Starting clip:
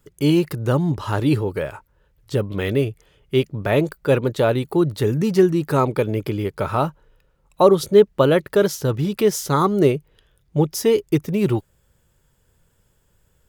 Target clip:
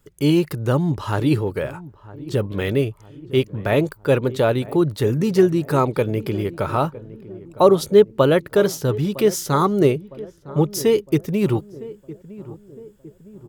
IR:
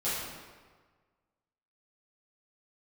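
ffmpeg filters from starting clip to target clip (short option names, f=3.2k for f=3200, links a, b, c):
-filter_complex "[0:a]asplit=2[a][b];[b]adelay=959,lowpass=f=940:p=1,volume=-17dB,asplit=2[c][d];[d]adelay=959,lowpass=f=940:p=1,volume=0.54,asplit=2[e][f];[f]adelay=959,lowpass=f=940:p=1,volume=0.54,asplit=2[g][h];[h]adelay=959,lowpass=f=940:p=1,volume=0.54,asplit=2[i][j];[j]adelay=959,lowpass=f=940:p=1,volume=0.54[k];[a][c][e][g][i][k]amix=inputs=6:normalize=0"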